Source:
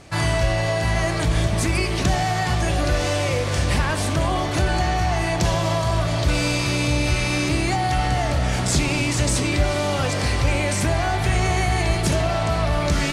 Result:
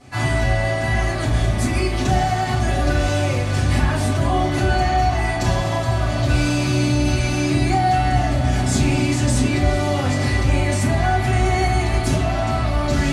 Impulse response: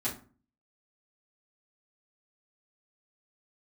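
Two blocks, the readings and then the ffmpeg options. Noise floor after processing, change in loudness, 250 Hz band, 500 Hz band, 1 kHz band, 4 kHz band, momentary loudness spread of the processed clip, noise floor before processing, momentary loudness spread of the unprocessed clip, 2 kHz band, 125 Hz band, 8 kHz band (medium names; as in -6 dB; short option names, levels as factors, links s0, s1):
-22 dBFS, +2.0 dB, +3.5 dB, +0.5 dB, +3.0 dB, -2.0 dB, 3 LU, -23 dBFS, 1 LU, +0.5 dB, +3.0 dB, -2.0 dB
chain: -filter_complex "[1:a]atrim=start_sample=2205[s0];[0:a][s0]afir=irnorm=-1:irlink=0,volume=0.562"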